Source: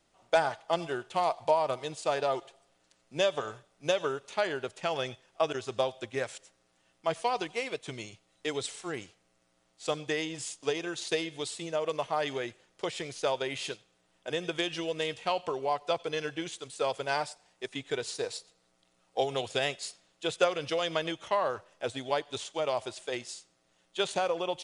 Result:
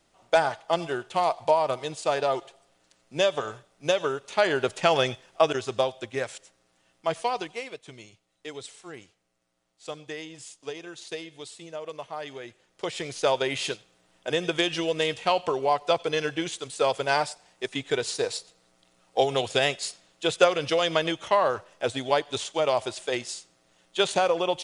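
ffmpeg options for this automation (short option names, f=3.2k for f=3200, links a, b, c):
-af "volume=23dB,afade=t=in:st=4.26:d=0.46:silence=0.446684,afade=t=out:st=4.72:d=1.23:silence=0.398107,afade=t=out:st=7.2:d=0.6:silence=0.375837,afade=t=in:st=12.42:d=0.9:silence=0.251189"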